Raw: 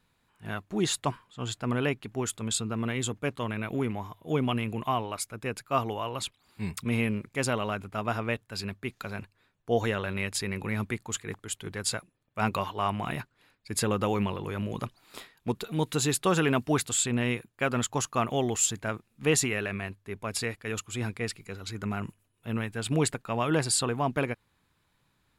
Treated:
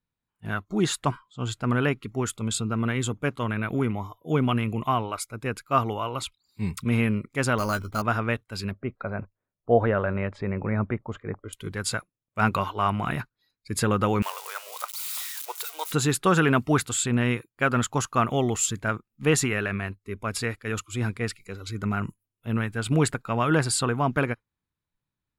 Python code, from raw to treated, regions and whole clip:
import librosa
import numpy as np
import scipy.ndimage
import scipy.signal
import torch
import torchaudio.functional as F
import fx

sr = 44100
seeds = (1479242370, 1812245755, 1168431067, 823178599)

y = fx.chain(x, sr, fx.low_shelf(hz=77.0, db=7.0),
    fx.doubler(ms=13.0, db=-8),
    fx.resample_bad(factor=8, down='filtered', up='hold'), at=(7.58, 8.02))
y = fx.chain(y, sr, fx.lowpass(hz=1600.0, slope=12),
    fx.peak_eq(hz=600.0, db=8.5, octaves=0.59), at=(8.71, 11.53))
y = fx.chain(y, sr, fx.crossing_spikes(level_db=-26.0),
    fx.highpass(hz=650.0, slope=24),
    fx.quant_companded(bits=8), at=(14.22, 15.92))
y = fx.low_shelf(y, sr, hz=340.0, db=6.5)
y = fx.noise_reduce_blind(y, sr, reduce_db=20)
y = fx.dynamic_eq(y, sr, hz=1400.0, q=1.8, threshold_db=-46.0, ratio=4.0, max_db=8)